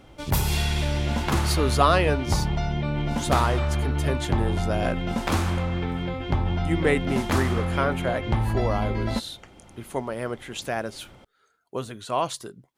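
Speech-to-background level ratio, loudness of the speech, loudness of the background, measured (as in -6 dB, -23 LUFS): -1.5 dB, -28.0 LUFS, -26.5 LUFS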